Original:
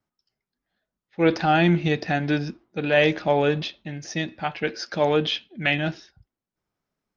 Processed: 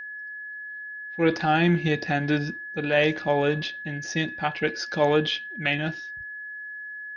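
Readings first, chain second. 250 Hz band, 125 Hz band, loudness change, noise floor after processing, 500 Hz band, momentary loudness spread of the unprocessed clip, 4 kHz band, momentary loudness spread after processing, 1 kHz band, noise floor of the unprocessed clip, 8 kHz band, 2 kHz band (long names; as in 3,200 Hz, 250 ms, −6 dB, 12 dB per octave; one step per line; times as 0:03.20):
−1.5 dB, −1.5 dB, −2.5 dB, −38 dBFS, −2.0 dB, 12 LU, −1.5 dB, 14 LU, −1.5 dB, below −85 dBFS, can't be measured, +1.0 dB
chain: automatic gain control gain up to 12 dB
notch filter 650 Hz, Q 16
steady tone 1,700 Hz −27 dBFS
level −7.5 dB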